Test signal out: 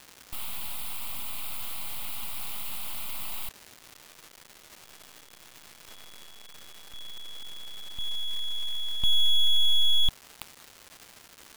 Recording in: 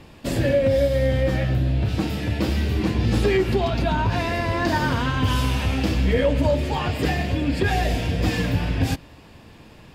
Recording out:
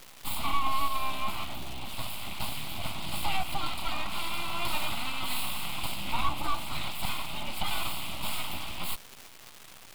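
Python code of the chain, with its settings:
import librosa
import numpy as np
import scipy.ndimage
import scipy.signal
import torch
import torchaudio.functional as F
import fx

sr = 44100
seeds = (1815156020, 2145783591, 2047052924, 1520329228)

y = fx.bass_treble(x, sr, bass_db=-13, treble_db=11)
y = np.abs(y)
y = fx.fixed_phaser(y, sr, hz=1700.0, stages=6)
y = fx.dmg_crackle(y, sr, seeds[0], per_s=500.0, level_db=-33.0)
y = y * librosa.db_to_amplitude(-2.0)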